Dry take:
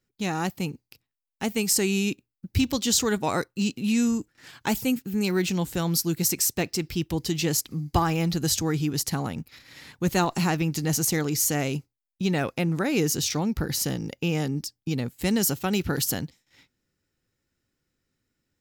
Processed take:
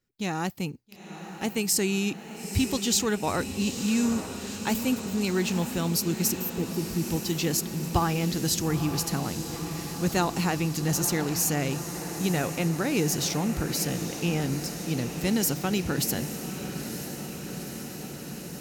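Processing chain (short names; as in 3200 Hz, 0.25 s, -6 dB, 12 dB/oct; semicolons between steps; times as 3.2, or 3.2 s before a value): spectral gain 6.32–7.02, 510–12000 Hz -19 dB; on a send: diffused feedback echo 0.911 s, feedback 77%, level -10 dB; on the sum: gain -2 dB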